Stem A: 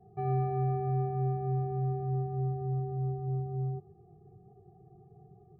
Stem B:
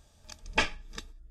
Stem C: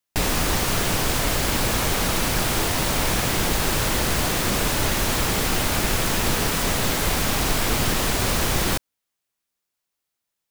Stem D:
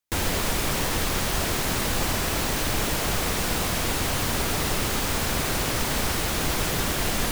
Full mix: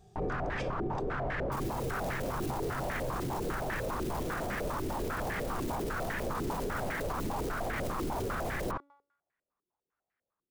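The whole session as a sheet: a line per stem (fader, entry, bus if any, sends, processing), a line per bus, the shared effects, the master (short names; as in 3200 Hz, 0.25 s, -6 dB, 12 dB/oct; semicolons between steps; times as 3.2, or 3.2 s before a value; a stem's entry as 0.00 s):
-3.0 dB, 0.00 s, no send, dry
-6.0 dB, 0.00 s, no send, dry
-3.0 dB, 0.00 s, no send, de-hum 283.2 Hz, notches 35; stepped low-pass 10 Hz 350–1800 Hz
-12.5 dB, 1.40 s, no send, wrapped overs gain 19.5 dB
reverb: off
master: limiter -26.5 dBFS, peak gain reduction 16 dB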